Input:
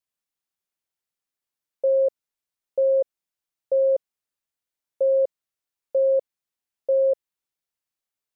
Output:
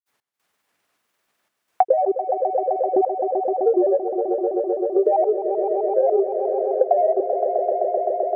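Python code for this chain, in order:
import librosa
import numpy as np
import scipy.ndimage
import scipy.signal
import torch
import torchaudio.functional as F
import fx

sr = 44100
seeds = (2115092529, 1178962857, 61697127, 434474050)

p1 = fx.highpass(x, sr, hz=350.0, slope=6)
p2 = fx.transient(p1, sr, attack_db=6, sustain_db=-3)
p3 = fx.level_steps(p2, sr, step_db=17)
p4 = p2 + (p3 * 10.0 ** (-1.0 / 20.0))
p5 = fx.granulator(p4, sr, seeds[0], grain_ms=100.0, per_s=20.0, spray_ms=100.0, spread_st=7)
p6 = fx.step_gate(p5, sr, bpm=152, pattern='xx..xxxxxxxxx', floor_db=-24.0, edge_ms=4.5)
p7 = p6 + fx.echo_swell(p6, sr, ms=129, loudest=5, wet_db=-13.0, dry=0)
p8 = fx.band_squash(p7, sr, depth_pct=70)
y = p8 * 10.0 ** (3.0 / 20.0)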